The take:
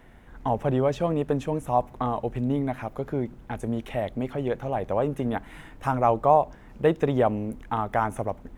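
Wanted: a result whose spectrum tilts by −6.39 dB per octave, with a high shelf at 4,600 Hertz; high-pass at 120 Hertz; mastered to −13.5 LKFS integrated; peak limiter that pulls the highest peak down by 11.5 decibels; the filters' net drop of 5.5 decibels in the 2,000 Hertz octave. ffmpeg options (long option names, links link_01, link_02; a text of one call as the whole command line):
ffmpeg -i in.wav -af "highpass=120,equalizer=frequency=2000:width_type=o:gain=-6.5,highshelf=frequency=4600:gain=-6.5,volume=18dB,alimiter=limit=-1.5dB:level=0:latency=1" out.wav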